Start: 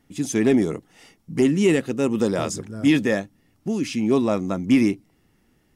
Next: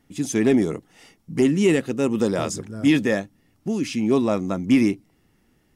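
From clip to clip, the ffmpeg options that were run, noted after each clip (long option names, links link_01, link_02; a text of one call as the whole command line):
ffmpeg -i in.wav -af anull out.wav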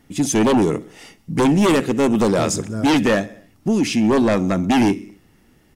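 ffmpeg -i in.wav -af "aecho=1:1:64|128|192|256:0.0841|0.0488|0.0283|0.0164,aeval=exprs='0.422*sin(PI/2*2.51*val(0)/0.422)':channel_layout=same,volume=-4dB" out.wav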